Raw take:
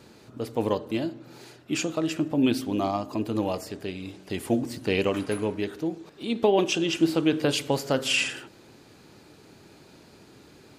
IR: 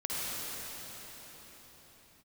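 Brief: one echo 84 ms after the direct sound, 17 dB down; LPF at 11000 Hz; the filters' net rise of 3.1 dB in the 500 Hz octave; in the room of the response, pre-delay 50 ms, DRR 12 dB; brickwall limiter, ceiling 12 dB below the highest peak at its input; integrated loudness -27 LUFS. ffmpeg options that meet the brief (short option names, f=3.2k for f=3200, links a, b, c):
-filter_complex "[0:a]lowpass=11k,equalizer=f=500:t=o:g=4,alimiter=limit=-18dB:level=0:latency=1,aecho=1:1:84:0.141,asplit=2[a][b];[1:a]atrim=start_sample=2205,adelay=50[c];[b][c]afir=irnorm=-1:irlink=0,volume=-19.5dB[d];[a][d]amix=inputs=2:normalize=0,volume=2dB"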